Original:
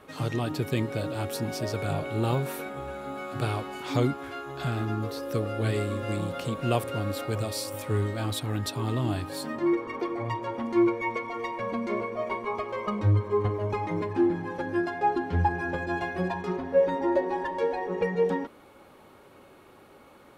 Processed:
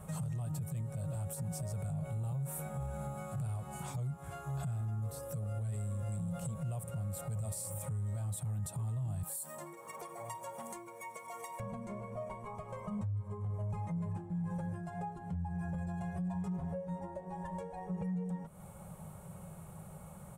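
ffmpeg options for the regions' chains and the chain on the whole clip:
ffmpeg -i in.wav -filter_complex "[0:a]asettb=1/sr,asplit=3[link_01][link_02][link_03];[link_01]atrim=end=9.234[link_04];[link_02]atrim=start=9.23:end=11.6,asetpts=PTS-STARTPTS,afade=type=in:duration=0.004:curve=qsin,afade=type=out:start_time=2.366:duration=0.004:curve=qsin,highpass=390,aemphasis=mode=production:type=75fm[link_05];[link_03]atrim=start=11.596[link_06];[link_04][link_05]acrossfade=duration=0.004:curve1=hsin:curve2=qsin[link_07];[link_07][link_06]acrossfade=duration=0.004:curve1=qsin:curve2=hsin,acompressor=threshold=-38dB:ratio=12,firequalizer=gain_entry='entry(120,0);entry(170,9);entry(260,-27);entry(620,-10);entry(1100,-15);entry(1700,-20);entry(4500,-22);entry(8100,2);entry(12000,-5)':delay=0.05:min_phase=1,alimiter=level_in=19dB:limit=-24dB:level=0:latency=1:release=32,volume=-19dB,volume=11.5dB" out.wav

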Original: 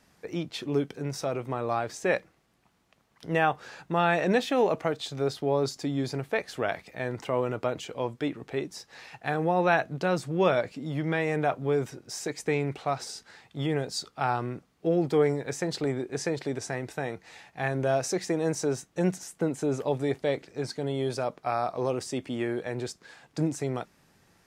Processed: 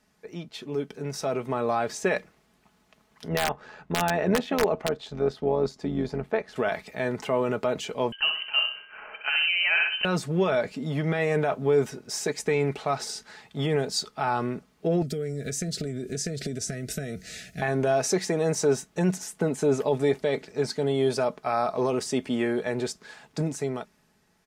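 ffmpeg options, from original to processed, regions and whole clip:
ffmpeg -i in.wav -filter_complex "[0:a]asettb=1/sr,asplit=3[link_01][link_02][link_03];[link_01]atrim=end=3.284[link_04];[link_02]atrim=start=3.28:end=6.56,asetpts=PTS-STARTPTS,afade=type=in:duration=0.004:curve=qsin,afade=type=out:start_time=3.276:duration=0.004:curve=qsin,lowpass=frequency=1600:poles=1,tremolo=f=85:d=0.621,aeval=exprs='(mod(5.96*val(0)+1,2)-1)/5.96':channel_layout=same[link_05];[link_03]atrim=start=6.556[link_06];[link_04][link_05]acrossfade=duration=0.004:curve1=hsin:curve2=qsin[link_07];[link_07][link_06]acrossfade=duration=0.004:curve1=qsin:curve2=hsin,asettb=1/sr,asplit=3[link_08][link_09][link_10];[link_08]atrim=end=8.124[link_11];[link_09]atrim=start=8.12:end=10.05,asetpts=PTS-STARTPTS,afade=type=in:duration=0.004:curve=qsin,afade=type=out:start_time=1.926:duration=0.004:curve=qsin,lowpass=frequency=2700:width_type=q:width=0.5098,lowpass=frequency=2700:width_type=q:width=0.6013,lowpass=frequency=2700:width_type=q:width=0.9,lowpass=frequency=2700:width_type=q:width=2.563,afreqshift=-3200,aeval=exprs='val(0)+0.00316*sin(2*PI*1600*n/s)':channel_layout=same,aecho=1:1:63|126|189|252:0.473|0.17|0.0613|0.0221,atrim=end_sample=85113[link_12];[link_10]atrim=start=10.046[link_13];[link_11][link_12]acrossfade=duration=0.004:curve1=hsin:curve2=qsin[link_14];[link_14][link_13]acrossfade=duration=0.004:curve1=qsin:curve2=hsin,asettb=1/sr,asplit=3[link_15][link_16][link_17];[link_15]atrim=end=15.024[link_18];[link_16]atrim=start=15.02:end=17.62,asetpts=PTS-STARTPTS,afade=type=in:duration=0.004:curve=qsin,afade=type=out:start_time=2.596:duration=0.004:curve=qsin,bass=frequency=250:gain=13,treble=frequency=4000:gain=12,acompressor=threshold=-31dB:ratio=16:attack=3.2:release=140:knee=1:detection=peak,asuperstop=centerf=960:order=8:qfactor=1.7[link_19];[link_17]atrim=start=17.616[link_20];[link_18][link_19]acrossfade=duration=0.004:curve1=hsin:curve2=qsin[link_21];[link_21][link_20]acrossfade=duration=0.004:curve1=qsin:curve2=hsin,alimiter=limit=-19dB:level=0:latency=1:release=18,aecho=1:1:4.7:0.47,dynaudnorm=framelen=250:gausssize=9:maxgain=9.5dB,volume=-5.5dB" out.wav

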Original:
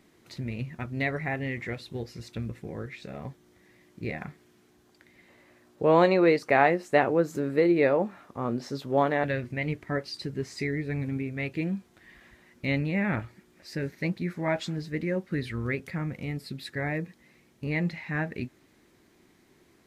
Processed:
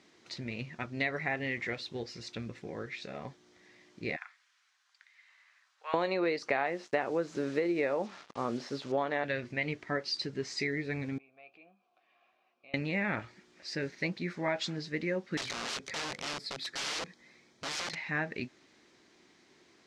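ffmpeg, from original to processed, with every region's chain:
ffmpeg -i in.wav -filter_complex "[0:a]asettb=1/sr,asplit=3[link_01][link_02][link_03];[link_01]atrim=end=4.164[link_04];[link_02]atrim=start=4.16:end=5.94,asetpts=PTS-STARTPTS,afade=type=in:duration=0.004:curve=qsin,afade=type=out:start_time=1.776:duration=0.004:curve=qsin,highpass=frequency=1200:width=0.5412,highpass=frequency=1200:width=1.3066,equalizer=frequency=5100:width=0.44:gain=-6[link_05];[link_03]atrim=start=5.936[link_06];[link_04][link_05]acrossfade=duration=0.004:curve1=hsin:curve2=qsin[link_07];[link_07][link_06]acrossfade=duration=0.004:curve1=qsin:curve2=hsin,asettb=1/sr,asplit=3[link_08][link_09][link_10];[link_08]atrim=end=6.664[link_11];[link_09]atrim=start=6.66:end=8.92,asetpts=PTS-STARTPTS,afade=type=in:duration=0.004:curve=qsin,afade=type=out:start_time=2.256:duration=0.004:curve=qsin,acrossover=split=3600[link_12][link_13];[link_13]acompressor=threshold=-55dB:ratio=4:attack=1:release=60[link_14];[link_12][link_14]amix=inputs=2:normalize=0,acrusher=bits=7:mix=0:aa=0.5[link_15];[link_10]atrim=start=8.916[link_16];[link_11][link_15]acrossfade=duration=0.004:curve1=hsin:curve2=qsin[link_17];[link_17][link_16]acrossfade=duration=0.004:curve1=qsin:curve2=hsin,asettb=1/sr,asplit=3[link_18][link_19][link_20];[link_18]atrim=end=11.184[link_21];[link_19]atrim=start=11.18:end=12.74,asetpts=PTS-STARTPTS,afade=type=in:duration=0.004:curve=qsin,afade=type=out:start_time=1.556:duration=0.004:curve=qsin,asplit=2[link_22][link_23];[link_23]adelay=16,volume=-11dB[link_24];[link_22][link_24]amix=inputs=2:normalize=0,atrim=end_sample=68796,acompressor=threshold=-39dB:ratio=2.5:attack=3.2:release=140:knee=1:detection=peak,asplit=3[link_25][link_26][link_27];[link_25]bandpass=frequency=730:width_type=q:width=8,volume=0dB[link_28];[link_26]bandpass=frequency=1090:width_type=q:width=8,volume=-6dB[link_29];[link_27]bandpass=frequency=2440:width_type=q:width=8,volume=-9dB[link_30];[link_28][link_29][link_30]amix=inputs=3:normalize=0[link_31];[link_20]atrim=start=12.736[link_32];[link_21][link_31]acrossfade=duration=0.004:curve1=hsin:curve2=qsin[link_33];[link_33][link_32]acrossfade=duration=0.004:curve1=qsin:curve2=hsin,asettb=1/sr,asplit=3[link_34][link_35][link_36];[link_34]atrim=end=15.374[link_37];[link_35]atrim=start=15.37:end=17.95,asetpts=PTS-STARTPTS,afade=type=in:duration=0.004:curve=qsin,afade=type=out:start_time=2.576:duration=0.004:curve=qsin,bandreject=frequency=2800:width=6.4,aeval=exprs='(mod(39.8*val(0)+1,2)-1)/39.8':channel_layout=same[link_38];[link_36]atrim=start=17.946[link_39];[link_37][link_38]acrossfade=duration=0.004:curve1=hsin:curve2=qsin[link_40];[link_40][link_39]acrossfade=duration=0.004:curve1=qsin:curve2=hsin,lowpass=frequency=5800:width=0.5412,lowpass=frequency=5800:width=1.3066,aemphasis=mode=production:type=bsi,acompressor=threshold=-27dB:ratio=6" out.wav

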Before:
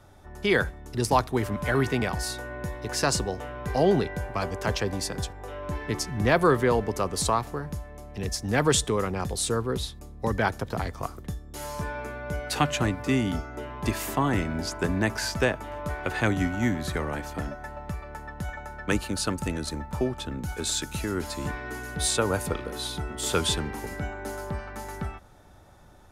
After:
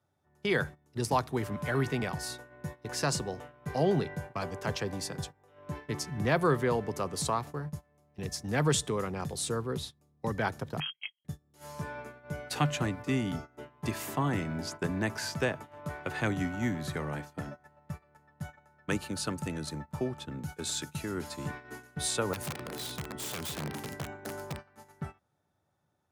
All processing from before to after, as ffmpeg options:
ffmpeg -i in.wav -filter_complex "[0:a]asettb=1/sr,asplit=3[link_01][link_02][link_03];[link_01]atrim=end=10.804[link_04];[link_02]atrim=start=10.8:end=11.25,asetpts=PTS-STARTPTS,afade=type=in:duration=0.004:curve=qsin,afade=type=out:start_time=0.446:duration=0.004:curve=qsin,agate=range=-25dB:threshold=-34dB:ratio=16:release=100:detection=peak,highshelf=frequency=2300:gain=-8.5,lowpass=frequency=2800:width_type=q:width=0.5098,lowpass=frequency=2800:width_type=q:width=0.6013,lowpass=frequency=2800:width_type=q:width=0.9,lowpass=frequency=2800:width_type=q:width=2.563,afreqshift=-3300[link_05];[link_03]atrim=start=11.246[link_06];[link_04][link_05]acrossfade=duration=0.004:curve1=hsin:curve2=qsin[link_07];[link_07][link_06]acrossfade=duration=0.004:curve1=qsin:curve2=hsin,asettb=1/sr,asplit=3[link_08][link_09][link_10];[link_08]atrim=end=22.334[link_11];[link_09]atrim=start=22.33:end=24.59,asetpts=PTS-STARTPTS,afade=type=in:duration=0.004:curve=qsin,afade=type=out:start_time=2.256:duration=0.004:curve=qsin,equalizer=frequency=170:width=0.47:gain=4.5,acompressor=threshold=-26dB:ratio=12:attack=3.2:release=140:knee=1:detection=peak,aeval=exprs='(mod(16.8*val(0)+1,2)-1)/16.8':channel_layout=same[link_12];[link_10]atrim=start=24.586[link_13];[link_11][link_12]acrossfade=duration=0.004:curve1=hsin:curve2=qsin[link_14];[link_14][link_13]acrossfade=duration=0.004:curve1=qsin:curve2=hsin,highpass=frequency=85:width=0.5412,highpass=frequency=85:width=1.3066,agate=range=-17dB:threshold=-35dB:ratio=16:detection=peak,equalizer=frequency=150:width=6.3:gain=7.5,volume=-6dB" out.wav

